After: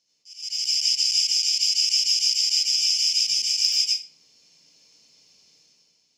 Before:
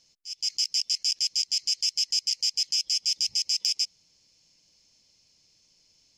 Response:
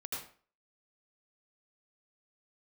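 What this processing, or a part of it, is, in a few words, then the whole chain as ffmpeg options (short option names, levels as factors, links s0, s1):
far laptop microphone: -filter_complex "[1:a]atrim=start_sample=2205[s0];[0:a][s0]afir=irnorm=-1:irlink=0,highpass=160,dynaudnorm=f=110:g=11:m=3.55,volume=0.668"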